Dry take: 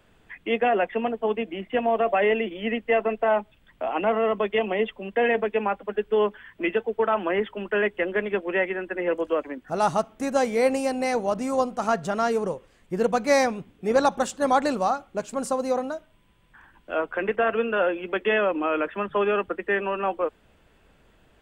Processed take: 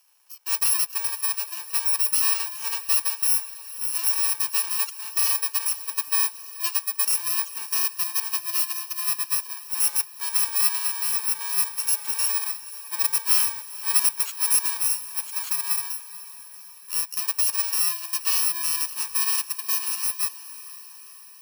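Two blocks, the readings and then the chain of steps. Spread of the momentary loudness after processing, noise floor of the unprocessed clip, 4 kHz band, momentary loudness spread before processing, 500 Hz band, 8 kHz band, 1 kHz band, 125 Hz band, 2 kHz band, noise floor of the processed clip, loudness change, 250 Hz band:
9 LU, -60 dBFS, +9.5 dB, 7 LU, under -30 dB, +20.0 dB, -11.5 dB, under -40 dB, -6.5 dB, -45 dBFS, +3.0 dB, under -35 dB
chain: FFT order left unsorted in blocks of 64 samples; HPF 790 Hz 24 dB/oct; diffused feedback echo 0.489 s, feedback 59%, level -15.5 dB

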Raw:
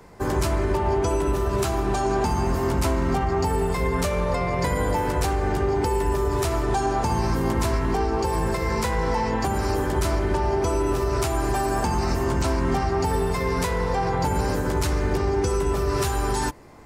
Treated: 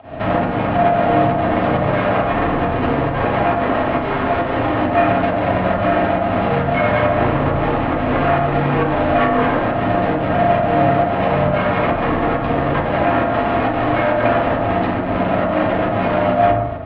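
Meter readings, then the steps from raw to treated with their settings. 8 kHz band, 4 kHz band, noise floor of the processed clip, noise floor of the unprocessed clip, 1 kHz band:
under -30 dB, +2.5 dB, -21 dBFS, -26 dBFS, +8.5 dB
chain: half-waves squared off; notches 50/100/150/200/250/300/350/400 Hz; limiter -22 dBFS, peak gain reduction 11.5 dB; pump 136 bpm, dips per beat 1, -21 dB, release 0.138 s; small resonant body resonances 220/830 Hz, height 16 dB, ringing for 45 ms; sine folder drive 12 dB, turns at -8 dBFS; FDN reverb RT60 1 s, low-frequency decay 1.1×, high-frequency decay 0.35×, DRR -4 dB; mistuned SSB -190 Hz 340–3300 Hz; gain -8.5 dB

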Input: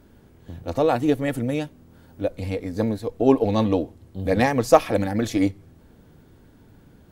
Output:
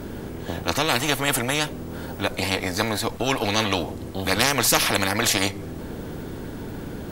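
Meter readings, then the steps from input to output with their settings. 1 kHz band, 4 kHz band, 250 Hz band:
+0.5 dB, +15.5 dB, -4.5 dB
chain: bell 220 Hz +5 dB 1.8 oct; spectral compressor 4:1; gain -1.5 dB

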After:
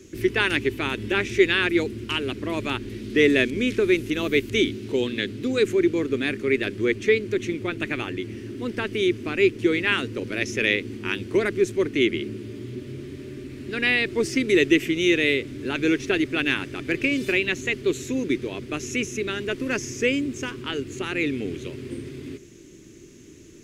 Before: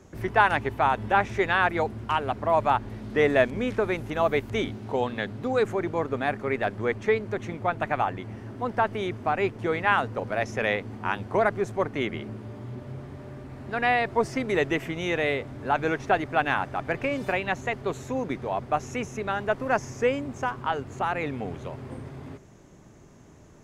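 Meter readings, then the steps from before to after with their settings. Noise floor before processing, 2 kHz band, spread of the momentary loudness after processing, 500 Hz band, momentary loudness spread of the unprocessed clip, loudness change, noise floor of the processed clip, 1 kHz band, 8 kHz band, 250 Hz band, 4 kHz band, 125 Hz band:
-51 dBFS, +3.5 dB, 12 LU, +2.5 dB, 13 LU, +3.0 dB, -46 dBFS, -11.5 dB, +10.0 dB, +7.5 dB, +10.0 dB, 0.0 dB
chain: EQ curve 190 Hz 0 dB, 350 Hz +12 dB, 760 Hz -18 dB, 2500 Hz +10 dB

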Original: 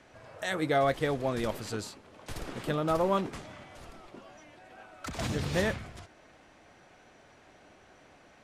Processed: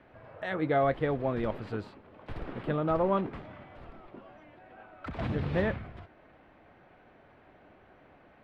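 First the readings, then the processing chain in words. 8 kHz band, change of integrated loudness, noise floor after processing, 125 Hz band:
under -25 dB, 0.0 dB, -59 dBFS, +1.5 dB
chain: air absorption 460 m; gain +1.5 dB

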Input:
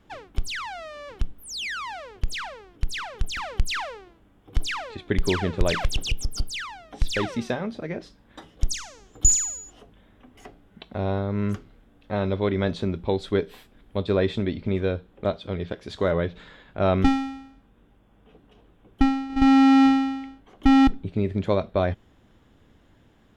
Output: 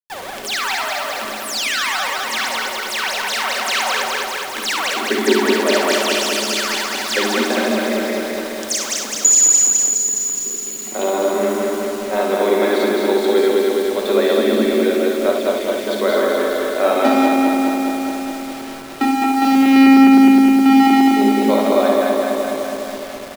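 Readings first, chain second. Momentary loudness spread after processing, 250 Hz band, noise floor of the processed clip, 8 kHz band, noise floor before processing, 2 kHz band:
12 LU, +8.5 dB, -29 dBFS, +13.0 dB, -58 dBFS, +12.5 dB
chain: regenerating reverse delay 0.104 s, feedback 82%, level -1 dB; spectral delete 9.89–10.85, 550–3900 Hz; Chebyshev high-pass 210 Hz, order 10; high shelf 8800 Hz +6.5 dB; notches 50/100/150/200/250/300/350/400 Hz; in parallel at -1.5 dB: compressor 20:1, threshold -26 dBFS, peak gain reduction 17 dB; on the sum: requantised 6-bit, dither none; on a send: early reflections 57 ms -7.5 dB, 71 ms -7.5 dB; on the sum: shoebox room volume 2400 m³, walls furnished, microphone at 1.1 m; maximiser +3 dB; gain -1 dB

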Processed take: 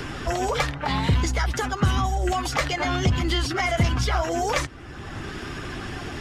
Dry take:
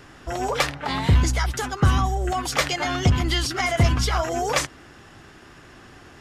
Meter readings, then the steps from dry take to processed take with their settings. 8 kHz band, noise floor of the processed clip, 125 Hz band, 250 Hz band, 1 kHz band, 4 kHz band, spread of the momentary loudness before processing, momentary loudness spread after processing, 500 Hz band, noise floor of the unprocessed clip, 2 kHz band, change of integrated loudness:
-3.5 dB, -37 dBFS, -2.0 dB, 0.0 dB, -0.5 dB, -2.0 dB, 6 LU, 11 LU, 0.0 dB, -47 dBFS, -0.5 dB, -2.0 dB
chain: bin magnitudes rounded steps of 15 dB; high shelf 7400 Hz -7 dB; in parallel at -12 dB: hard clip -23.5 dBFS, distortion -6 dB; on the sum: three-band squash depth 70%; gain -1.5 dB

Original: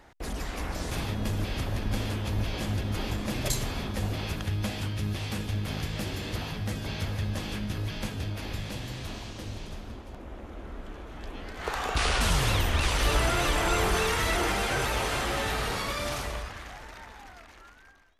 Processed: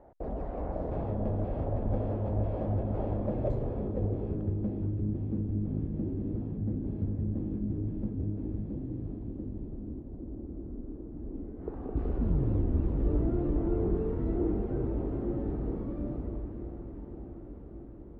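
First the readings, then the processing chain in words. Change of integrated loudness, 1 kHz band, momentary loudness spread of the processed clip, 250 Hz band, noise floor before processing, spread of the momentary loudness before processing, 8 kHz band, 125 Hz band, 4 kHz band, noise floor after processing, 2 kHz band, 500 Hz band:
-3.5 dB, -13.0 dB, 12 LU, +3.0 dB, -50 dBFS, 17 LU, under -40 dB, -0.5 dB, under -35 dB, -44 dBFS, under -25 dB, -1.0 dB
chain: diffused feedback echo 0.56 s, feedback 76%, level -12.5 dB; low-pass sweep 620 Hz -> 310 Hz, 3.16–5.14; gain -2 dB

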